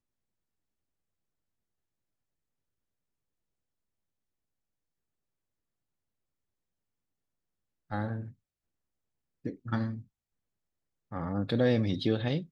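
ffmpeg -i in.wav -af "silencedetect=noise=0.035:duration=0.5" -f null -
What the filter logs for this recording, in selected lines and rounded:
silence_start: 0.00
silence_end: 7.93 | silence_duration: 7.93
silence_start: 8.16
silence_end: 9.46 | silence_duration: 1.30
silence_start: 9.91
silence_end: 11.13 | silence_duration: 1.23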